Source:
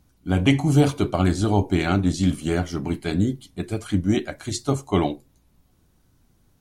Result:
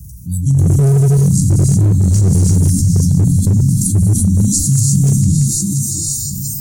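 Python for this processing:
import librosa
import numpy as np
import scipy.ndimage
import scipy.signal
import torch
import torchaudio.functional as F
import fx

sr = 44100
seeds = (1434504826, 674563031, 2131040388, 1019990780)

p1 = fx.reverse_delay_fb(x, sr, ms=344, feedback_pct=55, wet_db=-9.0)
p2 = fx.low_shelf(p1, sr, hz=91.0, db=12.0)
p3 = fx.rider(p2, sr, range_db=4, speed_s=2.0)
p4 = p2 + F.gain(torch.from_numpy(p3), 0.5).numpy()
p5 = scipy.signal.sosfilt(scipy.signal.butter(2, 72.0, 'highpass', fs=sr, output='sos'), p4)
p6 = fx.transient(p5, sr, attack_db=0, sustain_db=8)
p7 = fx.rev_gated(p6, sr, seeds[0], gate_ms=380, shape='rising', drr_db=-3.5)
p8 = fx.noise_reduce_blind(p7, sr, reduce_db=21)
p9 = scipy.signal.sosfilt(scipy.signal.cheby2(4, 50, [390.0, 2900.0], 'bandstop', fs=sr, output='sos'), p8)
p10 = fx.high_shelf(p9, sr, hz=10000.0, db=7.0)
p11 = np.clip(p10, -10.0 ** (-6.5 / 20.0), 10.0 ** (-6.5 / 20.0))
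p12 = fx.echo_thinned(p11, sr, ms=97, feedback_pct=59, hz=1100.0, wet_db=-19)
p13 = fx.env_flatten(p12, sr, amount_pct=70)
y = F.gain(torch.from_numpy(p13), -2.0).numpy()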